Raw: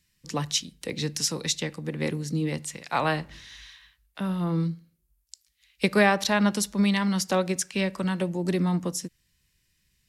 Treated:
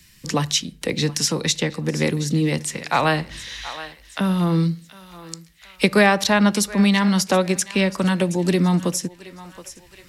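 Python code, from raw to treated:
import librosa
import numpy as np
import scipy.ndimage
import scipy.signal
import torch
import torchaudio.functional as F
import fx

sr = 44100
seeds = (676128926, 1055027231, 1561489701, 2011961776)

p1 = x + fx.echo_thinned(x, sr, ms=722, feedback_pct=34, hz=770.0, wet_db=-18.5, dry=0)
p2 = fx.band_squash(p1, sr, depth_pct=40)
y = F.gain(torch.from_numpy(p2), 7.0).numpy()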